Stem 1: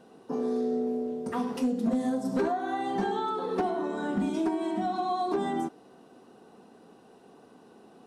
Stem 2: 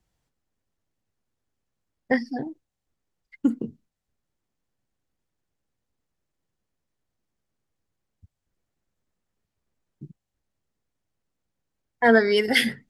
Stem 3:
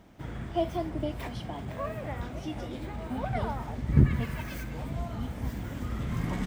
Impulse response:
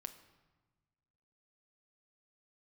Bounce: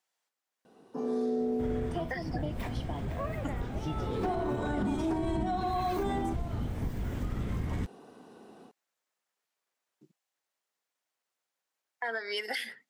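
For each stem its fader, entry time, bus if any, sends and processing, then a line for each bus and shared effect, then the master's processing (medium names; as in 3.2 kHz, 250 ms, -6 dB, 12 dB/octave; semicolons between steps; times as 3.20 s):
-5.5 dB, 0.65 s, no bus, no send, level rider gain up to 7 dB; auto duck -23 dB, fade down 0.25 s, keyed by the second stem
-1.5 dB, 0.00 s, bus A, no send, high-pass 730 Hz 12 dB/octave; level rider gain up to 3.5 dB
-0.5 dB, 1.40 s, bus A, no send, octave divider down 1 oct, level +3 dB
bus A: 0.0 dB, compression 12:1, threshold -29 dBFS, peak gain reduction 19.5 dB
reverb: none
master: peak limiter -23.5 dBFS, peak gain reduction 7.5 dB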